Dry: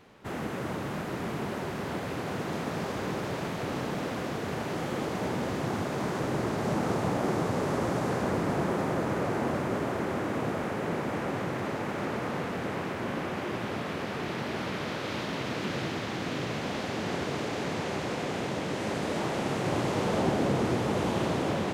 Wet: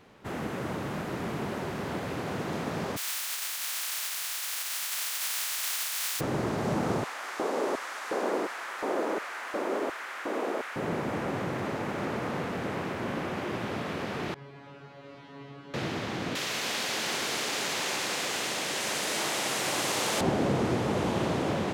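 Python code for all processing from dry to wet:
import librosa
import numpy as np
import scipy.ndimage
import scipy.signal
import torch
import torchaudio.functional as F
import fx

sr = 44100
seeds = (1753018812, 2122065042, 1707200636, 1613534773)

y = fx.spec_flatten(x, sr, power=0.11, at=(2.96, 6.19), fade=0.02)
y = fx.highpass(y, sr, hz=1200.0, slope=12, at=(2.96, 6.19), fade=0.02)
y = fx.chain(y, sr, fx.highpass(hz=210.0, slope=24),
    fx.filter_lfo_highpass(shape='square', hz=1.4, low_hz=370.0, high_hz=1500.0, q=1.2), at=(7.04, 10.76))
y = fx.chain(y, sr, fx.lowpass(hz=2000.0, slope=6),
    fx.comb_fb(f0_hz=140.0, decay_s=0.49, harmonics='all', damping=0.0, mix_pct=100), at=(14.34, 15.74))
y = fx.chain(y, sr, fx.tilt_eq(slope=4.5),
    fx.echo_crushed(ms=113, feedback_pct=80, bits=9, wet_db=-9.5), at=(16.35, 20.21))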